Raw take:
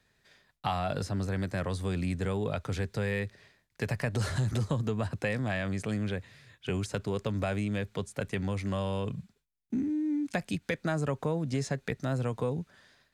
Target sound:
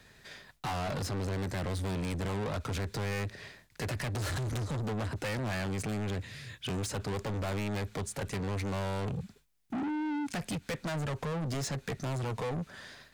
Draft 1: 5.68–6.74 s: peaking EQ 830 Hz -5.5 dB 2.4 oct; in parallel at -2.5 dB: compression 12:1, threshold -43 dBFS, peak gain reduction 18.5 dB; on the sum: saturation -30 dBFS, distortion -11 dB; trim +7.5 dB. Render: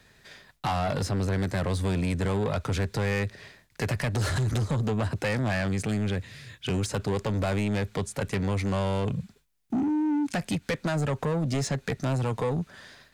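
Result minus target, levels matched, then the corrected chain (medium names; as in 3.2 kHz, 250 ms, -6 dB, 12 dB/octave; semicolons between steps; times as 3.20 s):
saturation: distortion -6 dB
5.68–6.74 s: peaking EQ 830 Hz -5.5 dB 2.4 oct; in parallel at -2.5 dB: compression 12:1, threshold -43 dBFS, peak gain reduction 18.5 dB; on the sum: saturation -39.5 dBFS, distortion -5 dB; trim +7.5 dB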